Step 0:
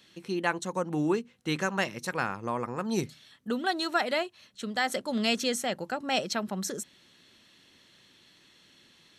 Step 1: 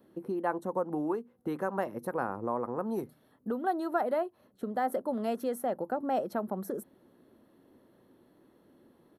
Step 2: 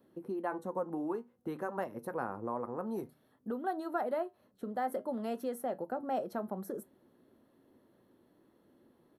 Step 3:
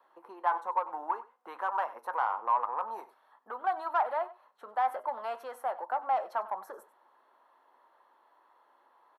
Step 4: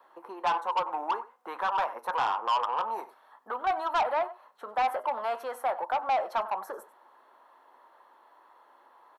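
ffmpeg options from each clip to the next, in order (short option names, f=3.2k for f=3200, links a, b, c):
-filter_complex "[0:a]firequalizer=gain_entry='entry(170,0);entry(250,7);entry(510,7);entry(2400,-22);entry(7100,-26);entry(11000,-2)':delay=0.05:min_phase=1,acrossover=split=720|4700[a][b][c];[a]acompressor=threshold=-33dB:ratio=6[d];[d][b][c]amix=inputs=3:normalize=0"
-af "flanger=delay=7.3:depth=2.7:regen=-75:speed=0.54:shape=triangular"
-filter_complex "[0:a]asplit=2[a][b];[b]highpass=f=720:p=1,volume=14dB,asoftclip=type=tanh:threshold=-21.5dB[c];[a][c]amix=inputs=2:normalize=0,lowpass=f=1.4k:p=1,volume=-6dB,highpass=f=950:t=q:w=3.6,aecho=1:1:95:0.126"
-af "asoftclip=type=tanh:threshold=-28dB,volume=6.5dB"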